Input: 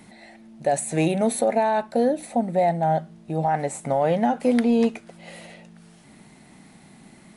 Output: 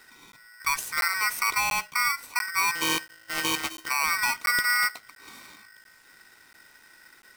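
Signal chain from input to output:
0:02.75–0:03.89: samples sorted by size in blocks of 32 samples
regular buffer underruns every 0.69 s, samples 512, zero, from 0:00.32
ring modulator with a square carrier 1,700 Hz
level −5 dB

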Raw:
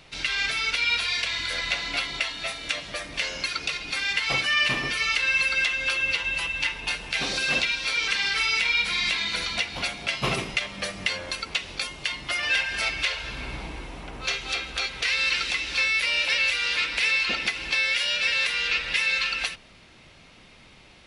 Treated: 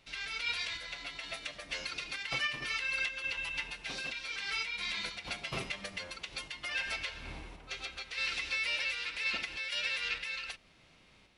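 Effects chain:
sample-and-hold tremolo
phase-vocoder stretch with locked phases 0.54×
level −7.5 dB

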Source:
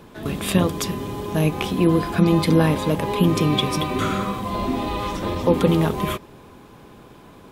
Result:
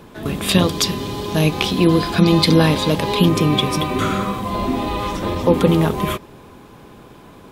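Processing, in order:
0:00.49–0:03.29: parametric band 4,300 Hz +10.5 dB 1.1 octaves
level +3 dB

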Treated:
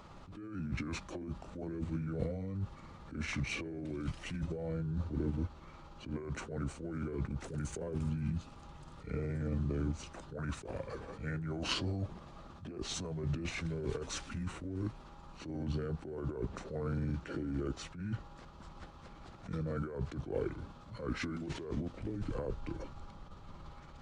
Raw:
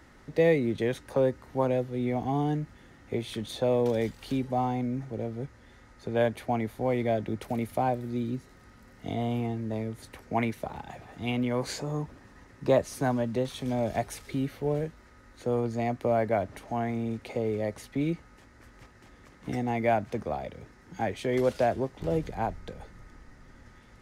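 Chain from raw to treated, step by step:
pitch shift by two crossfaded delay taps −7.5 semitones
compressor whose output falls as the input rises −35 dBFS, ratio −1
level that may rise only so fast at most 130 dB per second
level −1.5 dB

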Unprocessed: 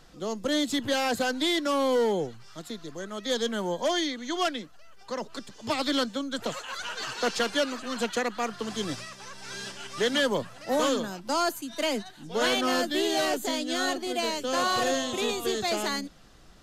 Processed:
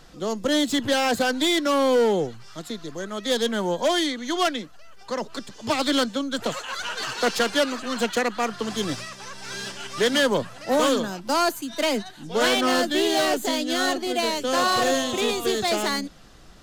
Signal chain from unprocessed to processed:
phase distortion by the signal itself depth 0.066 ms
level +5 dB

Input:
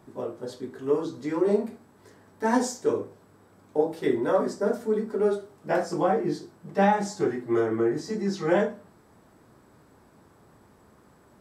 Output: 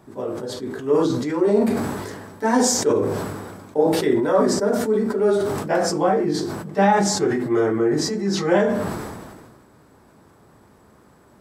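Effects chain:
level that may fall only so fast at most 34 dB per second
level +4 dB

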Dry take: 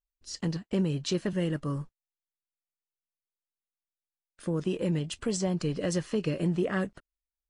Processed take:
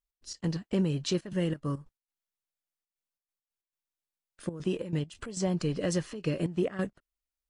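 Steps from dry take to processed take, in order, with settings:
gate pattern "x.x.xxxxxxx.xx." 137 BPM −12 dB

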